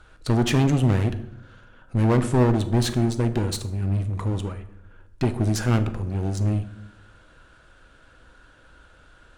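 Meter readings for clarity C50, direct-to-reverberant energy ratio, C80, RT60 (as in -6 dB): 13.0 dB, 8.5 dB, 16.0 dB, 0.80 s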